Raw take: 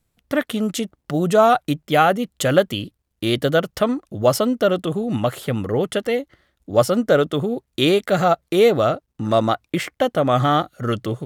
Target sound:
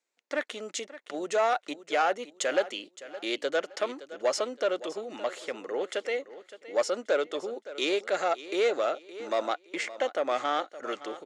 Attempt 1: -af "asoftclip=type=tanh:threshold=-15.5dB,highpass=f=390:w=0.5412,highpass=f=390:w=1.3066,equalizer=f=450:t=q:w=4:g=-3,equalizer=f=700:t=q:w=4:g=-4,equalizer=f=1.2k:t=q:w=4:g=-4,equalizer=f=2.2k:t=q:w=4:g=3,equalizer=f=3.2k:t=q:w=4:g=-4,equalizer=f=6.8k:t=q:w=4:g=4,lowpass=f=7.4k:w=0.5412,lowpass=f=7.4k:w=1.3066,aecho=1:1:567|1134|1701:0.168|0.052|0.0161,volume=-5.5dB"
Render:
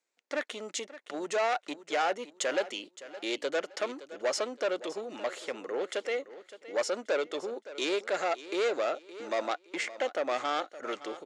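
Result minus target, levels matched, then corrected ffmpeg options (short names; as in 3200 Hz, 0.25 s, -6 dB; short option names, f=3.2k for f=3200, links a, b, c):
soft clip: distortion +7 dB
-af "asoftclip=type=tanh:threshold=-9dB,highpass=f=390:w=0.5412,highpass=f=390:w=1.3066,equalizer=f=450:t=q:w=4:g=-3,equalizer=f=700:t=q:w=4:g=-4,equalizer=f=1.2k:t=q:w=4:g=-4,equalizer=f=2.2k:t=q:w=4:g=3,equalizer=f=3.2k:t=q:w=4:g=-4,equalizer=f=6.8k:t=q:w=4:g=4,lowpass=f=7.4k:w=0.5412,lowpass=f=7.4k:w=1.3066,aecho=1:1:567|1134|1701:0.168|0.052|0.0161,volume=-5.5dB"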